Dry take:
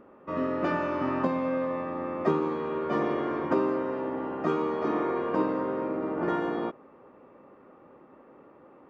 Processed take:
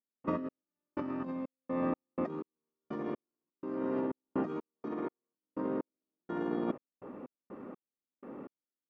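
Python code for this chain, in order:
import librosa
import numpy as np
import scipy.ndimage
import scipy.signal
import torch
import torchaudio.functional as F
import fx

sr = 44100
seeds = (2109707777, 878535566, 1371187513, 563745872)

y = fx.peak_eq(x, sr, hz=230.0, db=9.5, octaves=1.3)
y = fx.over_compress(y, sr, threshold_db=-31.0, ratio=-1.0)
y = fx.step_gate(y, sr, bpm=62, pattern='.x..xx.x.x.', floor_db=-60.0, edge_ms=4.5)
y = y * 10.0 ** (-3.5 / 20.0)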